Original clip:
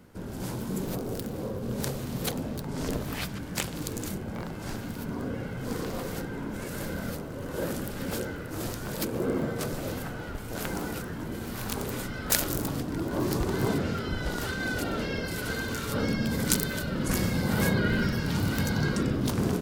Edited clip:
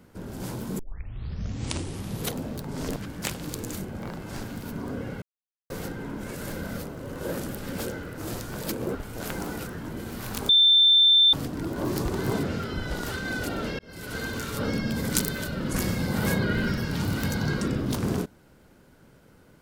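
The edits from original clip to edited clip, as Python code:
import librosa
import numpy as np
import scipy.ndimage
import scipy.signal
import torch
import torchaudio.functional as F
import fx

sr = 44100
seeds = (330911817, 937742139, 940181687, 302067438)

y = fx.edit(x, sr, fx.tape_start(start_s=0.79, length_s=1.56),
    fx.cut(start_s=2.96, length_s=0.33),
    fx.silence(start_s=5.55, length_s=0.48),
    fx.cut(start_s=9.28, length_s=1.02),
    fx.bleep(start_s=11.84, length_s=0.84, hz=3560.0, db=-14.0),
    fx.fade_in_span(start_s=15.14, length_s=0.44), tone=tone)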